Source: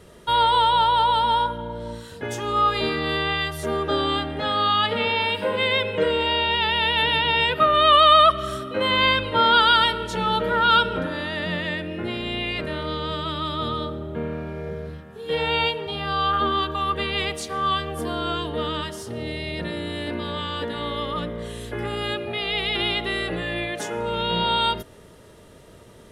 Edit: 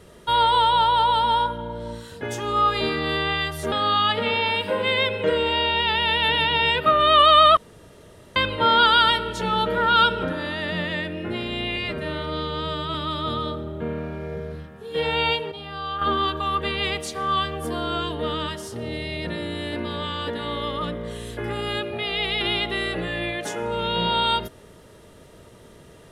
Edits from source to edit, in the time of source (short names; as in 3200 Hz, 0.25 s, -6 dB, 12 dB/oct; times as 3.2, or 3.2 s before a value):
3.72–4.46 cut
8.31–9.1 room tone
12.5–13.29 stretch 1.5×
15.86–16.36 gain -7.5 dB